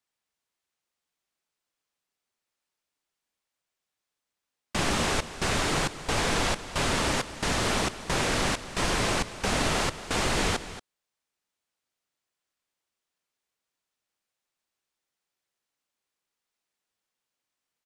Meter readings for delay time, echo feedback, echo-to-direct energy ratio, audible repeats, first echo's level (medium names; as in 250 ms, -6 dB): 230 ms, no regular repeats, -14.0 dB, 1, -14.0 dB